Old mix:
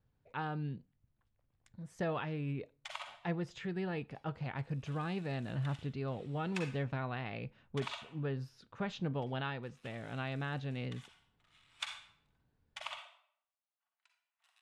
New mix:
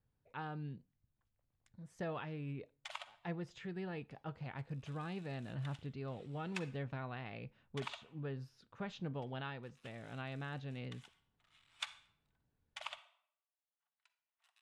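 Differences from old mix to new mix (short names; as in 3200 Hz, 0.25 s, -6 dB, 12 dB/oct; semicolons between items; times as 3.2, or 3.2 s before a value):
speech -5.5 dB; background: send -11.0 dB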